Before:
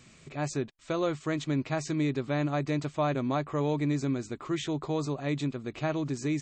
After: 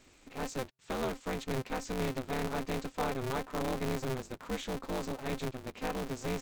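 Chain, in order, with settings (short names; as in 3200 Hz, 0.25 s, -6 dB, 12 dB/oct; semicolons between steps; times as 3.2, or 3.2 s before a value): polarity switched at an audio rate 130 Hz; gain -5.5 dB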